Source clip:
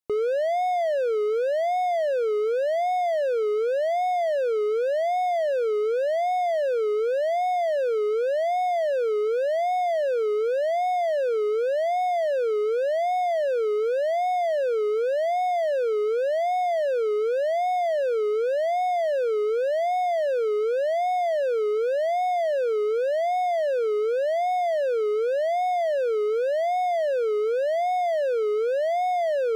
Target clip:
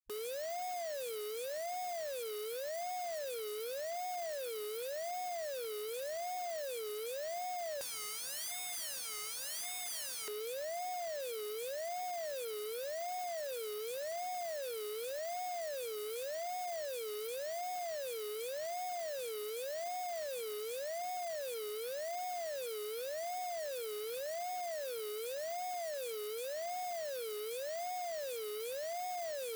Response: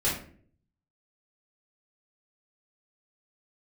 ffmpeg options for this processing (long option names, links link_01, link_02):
-filter_complex "[0:a]acrossover=split=360|1100|3700[link_01][link_02][link_03][link_04];[link_01]acompressor=threshold=-38dB:ratio=4[link_05];[link_02]acompressor=threshold=-26dB:ratio=4[link_06];[link_03]acompressor=threshold=-45dB:ratio=4[link_07];[link_04]acompressor=threshold=-59dB:ratio=4[link_08];[link_05][link_06][link_07][link_08]amix=inputs=4:normalize=0,afwtdn=0.01,asoftclip=type=tanh:threshold=-34.5dB,asettb=1/sr,asplit=3[link_09][link_10][link_11];[link_09]atrim=end=7.814[link_12];[link_10]atrim=start=7.81:end=10.28,asetpts=PTS-STARTPTS,afade=type=in:duration=0.004:curve=qsin,afade=type=out:start_time=2.466:duration=0.004:curve=qsin,tiltshelf=frequency=900:gain=8.5[link_13];[link_11]atrim=start=10.276[link_14];[link_12][link_13]acrossfade=duration=0.004:curve1=hsin:curve2=qsin[link_15];[link_15][link_14]acrossfade=duration=0.004:curve1=qsin:curve2=hsin,aeval=exprs='(mod(158*val(0)+1,2)-1)/158':channel_layout=same,lowshelf=frequency=380:gain=-6.5,volume=7dB"